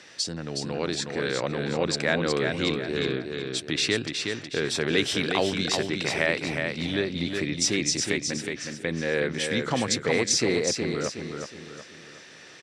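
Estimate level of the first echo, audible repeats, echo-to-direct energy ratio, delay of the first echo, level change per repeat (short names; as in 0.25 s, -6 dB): -5.0 dB, 4, -4.5 dB, 0.367 s, -8.0 dB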